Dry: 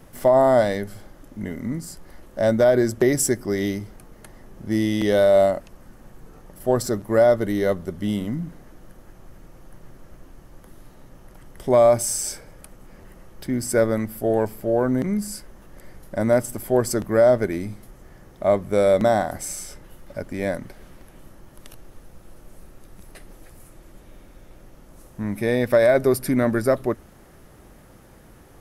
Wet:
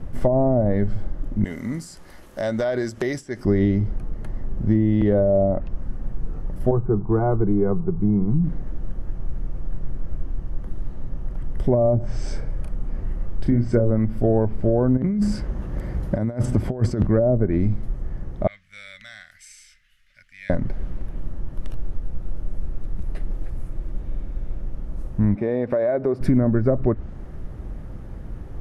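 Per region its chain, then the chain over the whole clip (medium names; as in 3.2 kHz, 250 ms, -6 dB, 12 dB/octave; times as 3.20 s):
1.44–3.45 s: tilt EQ +4.5 dB/octave + compression 2:1, threshold -29 dBFS
6.71–8.44 s: brick-wall FIR low-pass 2.3 kHz + static phaser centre 380 Hz, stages 8
11.99–13.91 s: low-pass that closes with the level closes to 1.7 kHz, closed at -17 dBFS + doubling 34 ms -6.5 dB
14.97–17.07 s: high-pass 46 Hz + compressor with a negative ratio -30 dBFS
18.47–20.50 s: inverse Chebyshev high-pass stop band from 990 Hz + treble shelf 7.2 kHz -11 dB
25.35–26.21 s: high-pass 470 Hz + tilt EQ -4 dB/octave + compression 2.5:1, threshold -27 dBFS
whole clip: low-pass that closes with the level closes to 580 Hz, closed at -13 dBFS; RIAA curve playback; compression, threshold -16 dBFS; trim +2 dB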